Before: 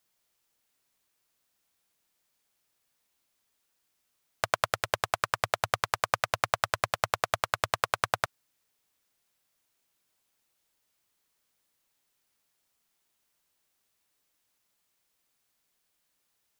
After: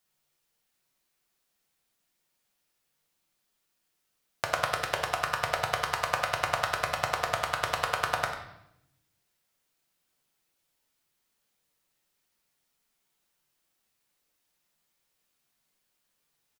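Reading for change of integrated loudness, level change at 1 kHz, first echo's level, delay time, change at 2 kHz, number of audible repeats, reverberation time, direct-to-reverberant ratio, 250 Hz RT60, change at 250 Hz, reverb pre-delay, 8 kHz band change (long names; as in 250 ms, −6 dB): 0.0 dB, 0.0 dB, −11.0 dB, 96 ms, +0.5 dB, 1, 0.80 s, 0.5 dB, 1.3 s, +1.0 dB, 4 ms, −1.0 dB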